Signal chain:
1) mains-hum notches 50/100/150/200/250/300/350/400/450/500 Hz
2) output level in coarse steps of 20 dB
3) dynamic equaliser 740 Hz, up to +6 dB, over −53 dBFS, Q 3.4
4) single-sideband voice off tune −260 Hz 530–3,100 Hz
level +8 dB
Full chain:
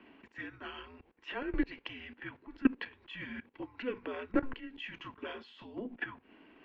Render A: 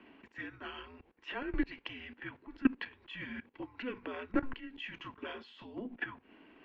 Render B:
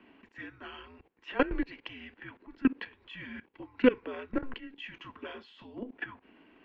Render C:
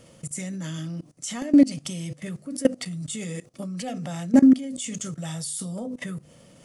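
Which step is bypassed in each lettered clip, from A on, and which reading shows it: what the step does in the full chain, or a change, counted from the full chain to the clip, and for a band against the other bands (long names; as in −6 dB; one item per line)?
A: 3, change in integrated loudness −1.0 LU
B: 1, 500 Hz band +5.0 dB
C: 4, 125 Hz band +11.0 dB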